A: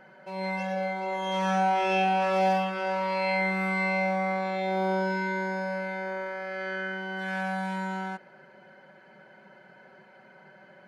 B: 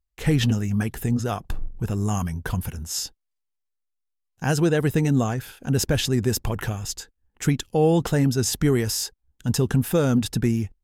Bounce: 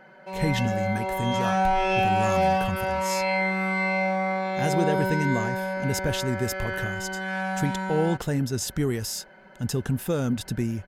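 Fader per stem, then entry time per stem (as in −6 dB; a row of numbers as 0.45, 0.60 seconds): +2.0, −5.5 decibels; 0.00, 0.15 seconds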